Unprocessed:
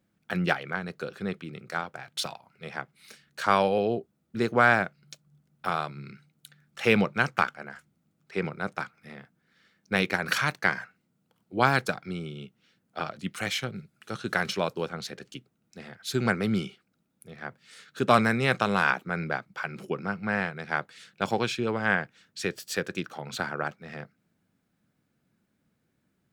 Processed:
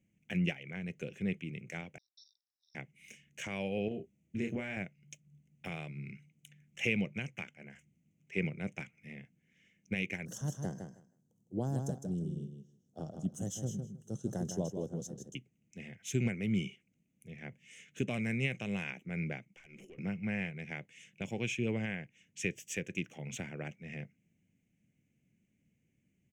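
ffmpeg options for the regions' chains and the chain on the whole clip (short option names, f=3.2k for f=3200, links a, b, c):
-filter_complex "[0:a]asettb=1/sr,asplit=3[a][b][c];[a]atrim=end=1.984[d];[b]atrim=start=1.98:end=2.75,asetpts=PTS-STARTPTS,afade=t=in:d=0.004:c=qsin,afade=t=out:st=0.766:d=0.004:c=qsin,deesser=0.8,acrusher=bits=4:mode=log:mix=0:aa=0.000001,asuperpass=centerf=4600:order=20:qfactor=2.3[e];[c]atrim=start=2.746[f];[d][e]acrossfade=d=0.004:c1=hsin:c2=qsin[g];[g][f]acrossfade=d=0.004:c1=qsin:c2=hsin,asettb=1/sr,asplit=3[h][i][j];[h]atrim=end=3.884[k];[i]atrim=start=3.88:end=4.77,asetpts=PTS-STARTPTS,afade=t=in:d=0.004:c=qsin,afade=t=out:st=0.886:d=0.004:c=qsin,acompressor=threshold=-29dB:ratio=4:attack=3.2:release=140:knee=1:detection=peak,asplit=2[l][m];[m]adelay=30,volume=-5dB[n];[l][n]amix=inputs=2:normalize=0,atrim=end_sample=39249[o];[j]atrim=start=4.766[p];[k][o]acrossfade=d=0.004:c1=hsin:c2=qsin[q];[q][p]acrossfade=d=0.004:c1=qsin:c2=hsin,asettb=1/sr,asplit=3[r][s][t];[r]atrim=end=10.254[u];[s]atrim=start=10.25:end=15.35,asetpts=PTS-STARTPTS,afade=t=in:d=0.004:c=qsin,afade=t=out:st=5.096:d=0.004:c=qsin,asuperstop=centerf=2300:order=4:qfactor=0.54,aecho=1:1:158|316|474:0.447|0.067|0.0101,atrim=end_sample=224910[v];[t]atrim=start=15.346[w];[u][v]acrossfade=d=0.004:c1=hsin:c2=qsin[x];[x][w]acrossfade=d=0.004:c1=qsin:c2=hsin,asettb=1/sr,asplit=3[y][z][aa];[y]atrim=end=19.484[ab];[z]atrim=start=19.48:end=19.98,asetpts=PTS-STARTPTS,afade=t=in:d=0.004:c=qsin,afade=t=out:st=0.496:d=0.004:c=qsin,highpass=270,acompressor=threshold=-44dB:ratio=2.5:attack=3.2:release=140:knee=1:detection=peak,aeval=exprs='(tanh(112*val(0)+0.15)-tanh(0.15))/112':c=same[ac];[aa]atrim=start=19.976[ad];[ab][ac]acrossfade=d=0.004:c1=hsin:c2=qsin[ae];[ae][ad]acrossfade=d=0.004:c1=qsin:c2=hsin,alimiter=limit=-16dB:level=0:latency=1:release=485,firequalizer=gain_entry='entry(150,0);entry(400,-7);entry(580,-9);entry(890,-18);entry(1300,-25);entry(2100,1);entry(2900,0);entry(4300,-26);entry(6200,1);entry(10000,-11)':delay=0.05:min_phase=1"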